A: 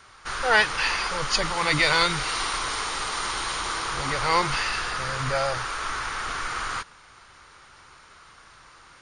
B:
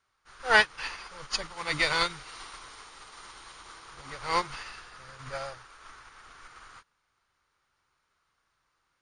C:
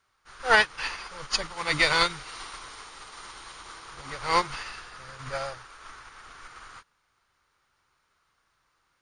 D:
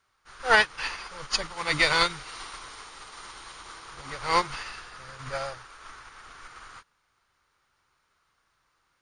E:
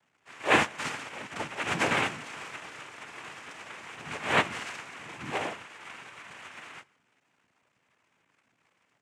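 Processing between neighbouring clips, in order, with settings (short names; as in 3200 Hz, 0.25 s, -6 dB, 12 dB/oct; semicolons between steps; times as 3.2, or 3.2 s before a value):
upward expander 2.5:1, over -33 dBFS
maximiser +9.5 dB; gain -5.5 dB
nothing audible
CVSD 16 kbps; noise vocoder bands 4; reverb RT60 0.70 s, pre-delay 5 ms, DRR 16.5 dB; gain +1.5 dB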